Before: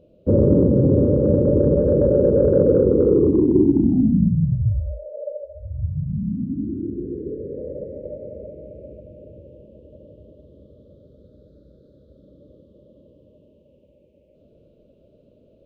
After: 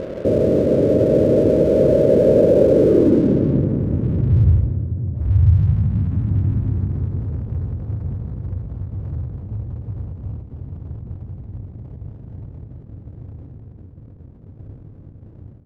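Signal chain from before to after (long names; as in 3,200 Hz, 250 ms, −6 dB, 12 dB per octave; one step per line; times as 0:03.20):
compressor on every frequency bin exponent 0.6
source passing by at 0:06.34, 23 m/s, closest 25 metres
in parallel at +2 dB: upward compression, threshold −17 dBFS
on the sum: soft clipping −12.5 dBFS, distortion −13 dB
low-pass filter sweep 530 Hz → 100 Hz, 0:02.73–0:03.74
dead-zone distortion −37.5 dBFS
tape delay 174 ms, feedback 84%, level −12 dB, low-pass 1,400 Hz
on a send at −11 dB: convolution reverb RT60 3.5 s, pre-delay 104 ms
on the sum: every ending faded ahead of time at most 100 dB per second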